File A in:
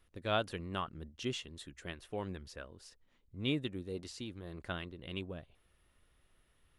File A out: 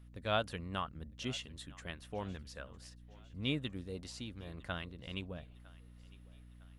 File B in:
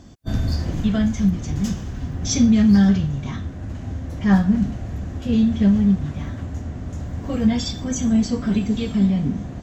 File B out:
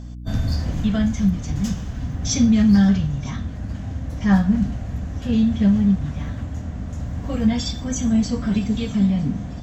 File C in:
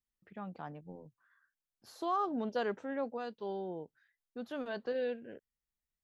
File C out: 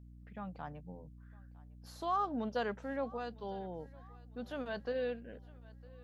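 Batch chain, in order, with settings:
mains hum 60 Hz, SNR 14 dB
parametric band 360 Hz −8 dB 0.4 octaves
feedback echo with a high-pass in the loop 956 ms, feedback 51%, high-pass 340 Hz, level −22 dB

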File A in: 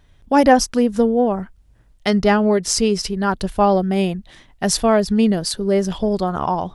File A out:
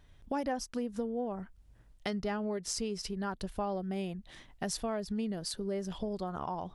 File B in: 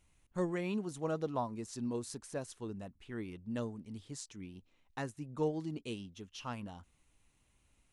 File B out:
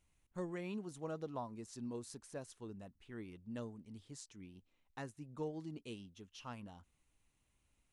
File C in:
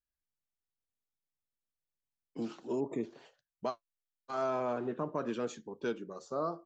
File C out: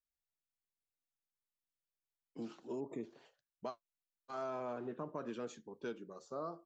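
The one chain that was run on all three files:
downward compressor 3 to 1, threshold −30 dBFS
level −6.5 dB

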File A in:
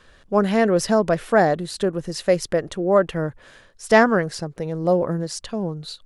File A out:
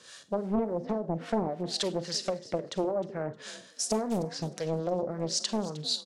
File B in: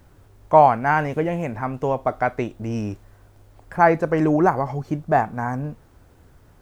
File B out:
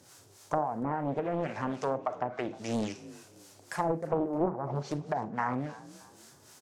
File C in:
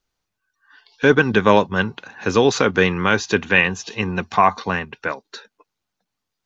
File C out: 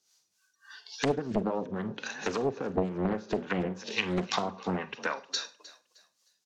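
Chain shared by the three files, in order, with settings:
high-pass filter 110 Hz 24 dB per octave
treble cut that deepens with the level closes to 470 Hz, closed at −15.5 dBFS
parametric band 6,000 Hz +10.5 dB 2 octaves
harmonic and percussive parts rebalanced percussive −6 dB
bass and treble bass −6 dB, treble +9 dB
downward compressor 5 to 1, threshold −25 dBFS
floating-point word with a short mantissa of 8 bits
two-band tremolo in antiphase 3.6 Hz, depth 70%, crossover 650 Hz
echo with shifted repeats 309 ms, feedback 31%, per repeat +40 Hz, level −18.5 dB
four-comb reverb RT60 0.33 s, combs from 33 ms, DRR 13 dB
highs frequency-modulated by the lows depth 0.74 ms
level +2.5 dB

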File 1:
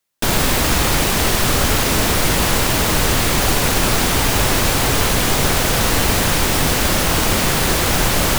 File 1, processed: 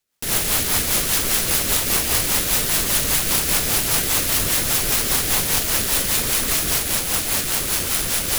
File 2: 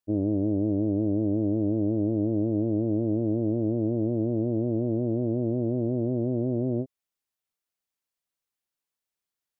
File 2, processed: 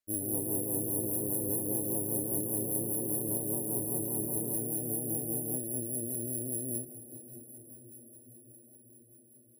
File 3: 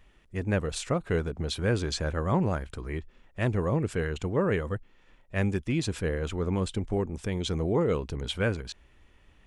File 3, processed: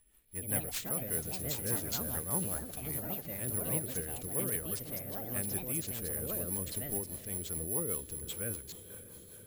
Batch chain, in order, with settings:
high-shelf EQ 6,800 Hz +11.5 dB
bad sample-rate conversion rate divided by 4×, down none, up zero stuff
on a send: feedback delay with all-pass diffusion 537 ms, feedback 71%, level −15 dB
on the sum: delay with pitch and tempo change per echo 138 ms, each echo +4 semitones, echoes 2
rotating-speaker cabinet horn 5 Hz
level −12.5 dB

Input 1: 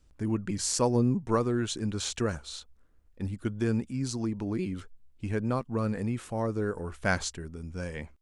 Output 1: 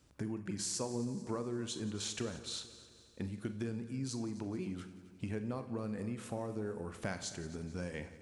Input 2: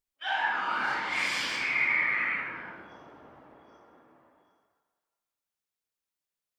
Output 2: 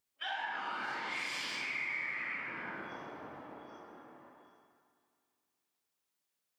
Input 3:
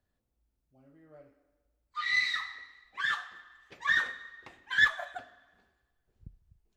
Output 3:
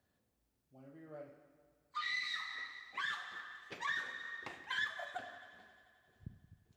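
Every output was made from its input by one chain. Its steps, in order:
high-pass filter 100 Hz 12 dB per octave
dynamic equaliser 1,400 Hz, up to −4 dB, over −43 dBFS, Q 1.2
downward compressor 4 to 1, threshold −42 dBFS
on a send: echo machine with several playback heads 88 ms, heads second and third, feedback 56%, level −18 dB
on the sum: four-comb reverb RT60 0.47 s, combs from 30 ms, DRR 10 dB
level +3.5 dB

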